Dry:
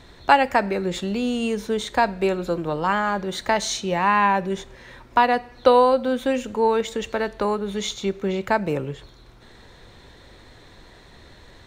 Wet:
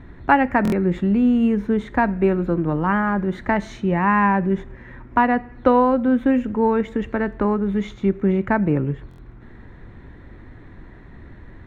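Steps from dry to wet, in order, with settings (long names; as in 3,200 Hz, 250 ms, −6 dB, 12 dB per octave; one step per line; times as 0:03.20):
drawn EQ curve 300 Hz 0 dB, 500 Hz −11 dB, 1,900 Hz −7 dB, 4,400 Hz −29 dB
buffer that repeats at 0:00.63/0:09.09, samples 1,024, times 3
level +8.5 dB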